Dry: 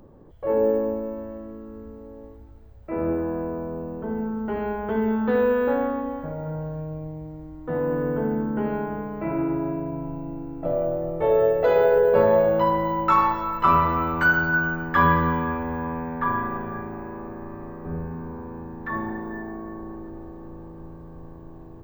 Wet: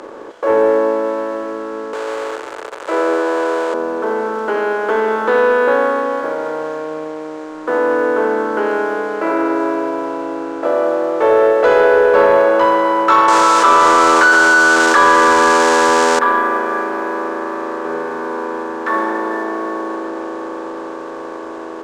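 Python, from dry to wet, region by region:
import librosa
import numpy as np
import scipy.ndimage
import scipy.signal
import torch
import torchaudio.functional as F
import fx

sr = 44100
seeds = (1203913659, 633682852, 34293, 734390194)

y = fx.chain(x, sr, fx.zero_step(step_db=-37.5),
    fx.steep_highpass(hz=360.0, slope=36),
    fx.peak_eq(hz=5700.0, db=-10.0, octaves=0.72), at=(1.93, 3.74))
y = fx.chain(y, sr, fx.crossing_spikes(level_db=-22.5),
    fx.highpass(hz=280.0, slope=12),
    fx.env_flatten(amount_pct=70), at=(13.28, 16.19))
y = fx.bin_compress(y, sr, power=0.6)
y = scipy.signal.sosfilt(scipy.signal.cheby1(3, 1.0, [330.0, 7400.0], 'bandpass', fs=sr, output='sos'), y)
y = fx.leveller(y, sr, passes=1)
y = F.gain(torch.from_numpy(y), 3.0).numpy()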